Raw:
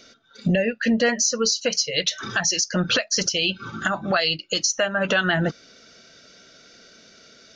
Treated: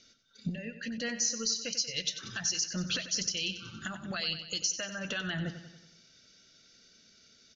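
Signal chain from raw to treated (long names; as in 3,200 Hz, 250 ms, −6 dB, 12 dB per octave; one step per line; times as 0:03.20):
Butterworth low-pass 7,700 Hz 72 dB per octave
parametric band 740 Hz −13.5 dB 2.7 octaves
0:00.49–0:00.98: downward compressor, threshold −28 dBFS, peak gain reduction 7.5 dB
repeating echo 93 ms, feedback 55%, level −11.5 dB
level −7.5 dB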